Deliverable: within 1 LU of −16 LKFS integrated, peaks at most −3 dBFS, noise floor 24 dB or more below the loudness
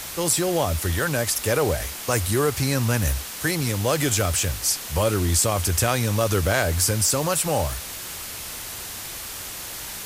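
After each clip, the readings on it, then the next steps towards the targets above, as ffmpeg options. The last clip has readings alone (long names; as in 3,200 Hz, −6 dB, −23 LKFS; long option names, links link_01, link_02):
background noise floor −35 dBFS; target noise floor −47 dBFS; integrated loudness −23.0 LKFS; sample peak −7.0 dBFS; target loudness −16.0 LKFS
→ -af "afftdn=noise_reduction=12:noise_floor=-35"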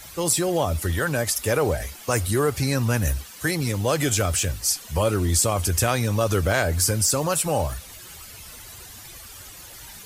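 background noise floor −43 dBFS; target noise floor −47 dBFS
→ -af "afftdn=noise_reduction=6:noise_floor=-43"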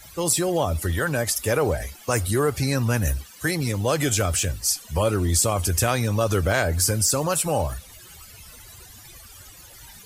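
background noise floor −46 dBFS; target noise floor −47 dBFS
→ -af "afftdn=noise_reduction=6:noise_floor=-46"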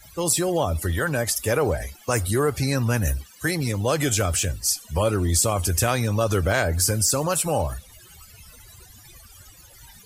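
background noise floor −49 dBFS; integrated loudness −23.0 LKFS; sample peak −7.0 dBFS; target loudness −16.0 LKFS
→ -af "volume=7dB,alimiter=limit=-3dB:level=0:latency=1"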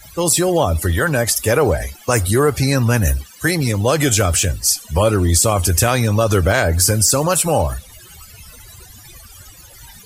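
integrated loudness −16.0 LKFS; sample peak −3.0 dBFS; background noise floor −42 dBFS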